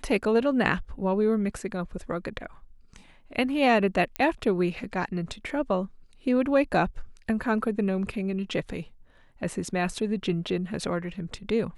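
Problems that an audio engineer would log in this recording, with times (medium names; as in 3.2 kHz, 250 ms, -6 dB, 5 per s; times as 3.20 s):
4.16 s: pop -14 dBFS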